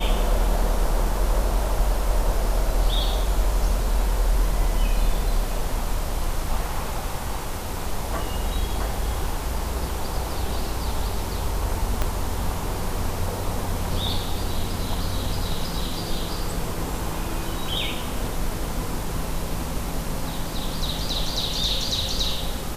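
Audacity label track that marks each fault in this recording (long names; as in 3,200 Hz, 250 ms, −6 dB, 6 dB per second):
12.020000	12.020000	click −9 dBFS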